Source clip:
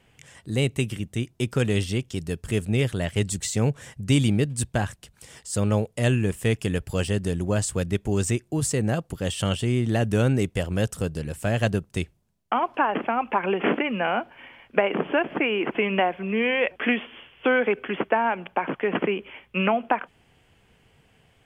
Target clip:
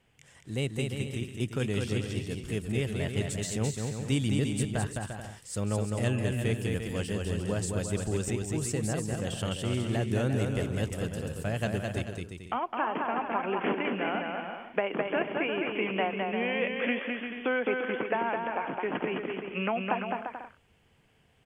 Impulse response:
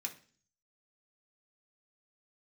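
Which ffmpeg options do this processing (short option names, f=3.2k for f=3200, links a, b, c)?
-af "aecho=1:1:210|346.5|435.2|492.9|530.4:0.631|0.398|0.251|0.158|0.1,volume=-8dB"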